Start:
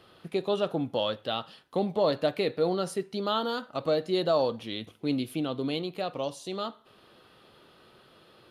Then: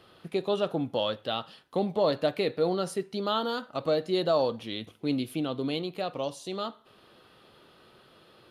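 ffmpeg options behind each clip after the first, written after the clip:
ffmpeg -i in.wav -af anull out.wav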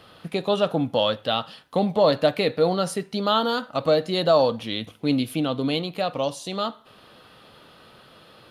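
ffmpeg -i in.wav -af "equalizer=frequency=370:width=5:gain=-8.5,volume=7.5dB" out.wav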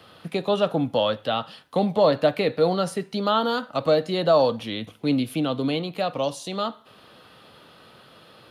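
ffmpeg -i in.wav -filter_complex "[0:a]highpass=60,acrossover=split=300|750|2900[link_01][link_02][link_03][link_04];[link_04]alimiter=level_in=3.5dB:limit=-24dB:level=0:latency=1:release=175,volume=-3.5dB[link_05];[link_01][link_02][link_03][link_05]amix=inputs=4:normalize=0" out.wav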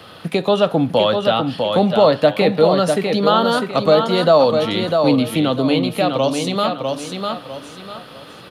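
ffmpeg -i in.wav -filter_complex "[0:a]aecho=1:1:650|1300|1950|2600:0.501|0.15|0.0451|0.0135,asplit=2[link_01][link_02];[link_02]acompressor=threshold=-28dB:ratio=6,volume=-0.5dB[link_03];[link_01][link_03]amix=inputs=2:normalize=0,volume=4dB" out.wav

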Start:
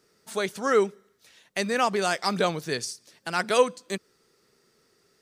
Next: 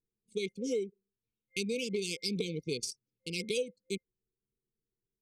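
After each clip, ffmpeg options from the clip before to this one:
ffmpeg -i in.wav -af "anlmdn=6.31,afftfilt=real='re*(1-between(b*sr/4096,520,2100))':imag='im*(1-between(b*sr/4096,520,2100))':win_size=4096:overlap=0.75,acompressor=threshold=-29dB:ratio=6,volume=-1.5dB" out.wav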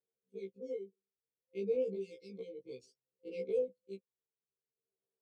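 ffmpeg -i in.wav -af "bandpass=frequency=570:width_type=q:width=3.9:csg=0,aphaser=in_gain=1:out_gain=1:delay=1:decay=0.62:speed=0.59:type=sinusoidal,afftfilt=real='re*1.73*eq(mod(b,3),0)':imag='im*1.73*eq(mod(b,3),0)':win_size=2048:overlap=0.75,volume=4dB" out.wav

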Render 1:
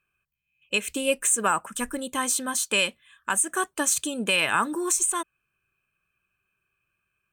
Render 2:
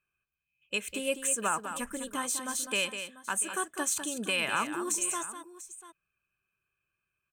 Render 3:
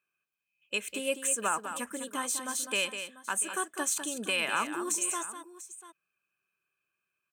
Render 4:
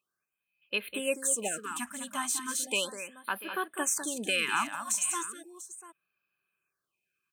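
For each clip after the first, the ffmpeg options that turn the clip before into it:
ffmpeg -i in.wav -af "aecho=1:1:201|692:0.355|0.158,volume=-7dB" out.wav
ffmpeg -i in.wav -af "highpass=210" out.wav
ffmpeg -i in.wav -af "afftfilt=real='re*(1-between(b*sr/1024,380*pow(7500/380,0.5+0.5*sin(2*PI*0.36*pts/sr))/1.41,380*pow(7500/380,0.5+0.5*sin(2*PI*0.36*pts/sr))*1.41))':imag='im*(1-between(b*sr/1024,380*pow(7500/380,0.5+0.5*sin(2*PI*0.36*pts/sr))/1.41,380*pow(7500/380,0.5+0.5*sin(2*PI*0.36*pts/sr))*1.41))':win_size=1024:overlap=0.75,volume=1dB" out.wav

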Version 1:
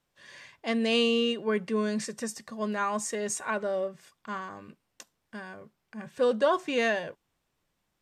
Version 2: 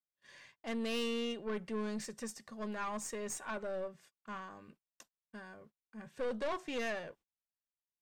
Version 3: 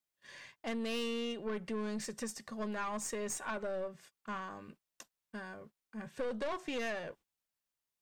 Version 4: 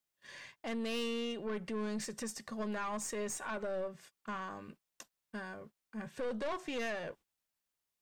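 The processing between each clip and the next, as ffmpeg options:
ffmpeg -i in.wav -af "agate=range=-26dB:threshold=-52dB:ratio=16:detection=peak,aeval=exprs='(tanh(20*val(0)+0.45)-tanh(0.45))/20':channel_layout=same,volume=-6.5dB" out.wav
ffmpeg -i in.wav -af "acompressor=threshold=-41dB:ratio=2.5,volume=5dB" out.wav
ffmpeg -i in.wav -af "alimiter=level_in=8dB:limit=-24dB:level=0:latency=1,volume=-8dB,volume=1.5dB" out.wav

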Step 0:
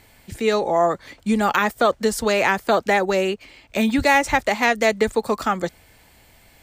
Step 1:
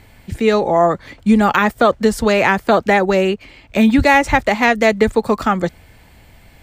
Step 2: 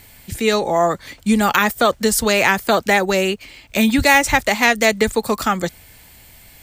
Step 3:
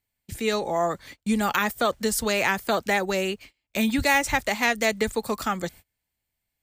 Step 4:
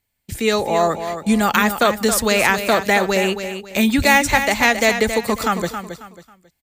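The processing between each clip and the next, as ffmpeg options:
ffmpeg -i in.wav -af "bass=frequency=250:gain=6,treble=frequency=4000:gain=-6,volume=4.5dB" out.wav
ffmpeg -i in.wav -af "crystalizer=i=4.5:c=0,volume=-4dB" out.wav
ffmpeg -i in.wav -af "agate=range=-29dB:threshold=-35dB:ratio=16:detection=peak,volume=-8dB" out.wav
ffmpeg -i in.wav -af "aecho=1:1:272|544|816:0.355|0.106|0.0319,volume=7dB" out.wav

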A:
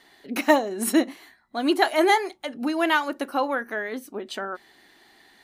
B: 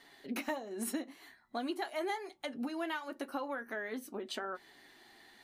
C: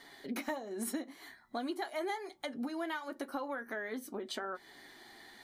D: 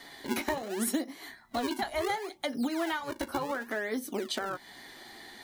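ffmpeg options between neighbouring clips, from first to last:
ffmpeg -i in.wav -af "acompressor=threshold=-32dB:ratio=5,flanger=delay=7:depth=1.7:regen=-52:speed=0.86:shape=sinusoidal" out.wav
ffmpeg -i in.wav -filter_complex "[0:a]bandreject=frequency=2700:width=6.4,asplit=2[link_01][link_02];[link_02]acompressor=threshold=-47dB:ratio=6,volume=3dB[link_03];[link_01][link_03]amix=inputs=2:normalize=0,volume=-3dB" out.wav
ffmpeg -i in.wav -filter_complex "[0:a]equalizer=frequency=1400:width=1.5:gain=-3,acrossover=split=410|1400|5900[link_01][link_02][link_03][link_04];[link_01]acrusher=samples=40:mix=1:aa=0.000001:lfo=1:lforange=64:lforate=0.69[link_05];[link_05][link_02][link_03][link_04]amix=inputs=4:normalize=0,volume=7.5dB" out.wav

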